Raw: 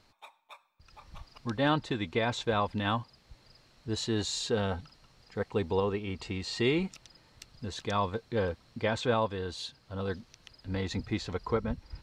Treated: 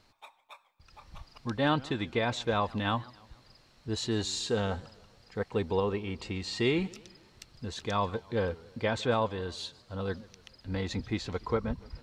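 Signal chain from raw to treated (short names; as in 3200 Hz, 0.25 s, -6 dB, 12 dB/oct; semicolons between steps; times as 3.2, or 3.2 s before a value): warbling echo 0.147 s, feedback 49%, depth 213 cents, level -22 dB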